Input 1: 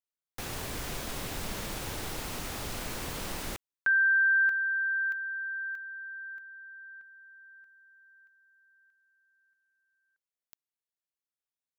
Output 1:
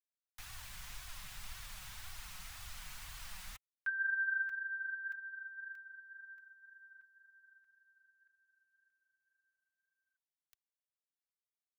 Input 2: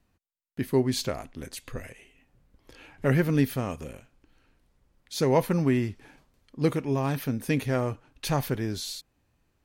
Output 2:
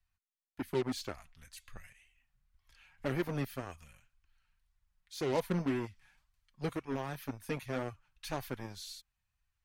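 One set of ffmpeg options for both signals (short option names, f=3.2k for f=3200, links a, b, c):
-filter_complex "[0:a]flanger=delay=2.6:depth=2.9:regen=31:speed=1.9:shape=sinusoidal,acrossover=split=140|900|4900[a][b][c][d];[b]acrusher=bits=4:mix=0:aa=0.5[e];[d]asoftclip=type=tanh:threshold=-37dB[f];[a][e][c][f]amix=inputs=4:normalize=0,volume=-6.5dB"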